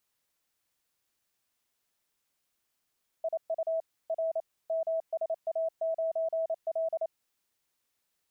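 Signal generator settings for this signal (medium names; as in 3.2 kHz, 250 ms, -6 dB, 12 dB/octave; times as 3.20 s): Morse "IU R MSA9L" 28 wpm 651 Hz -27 dBFS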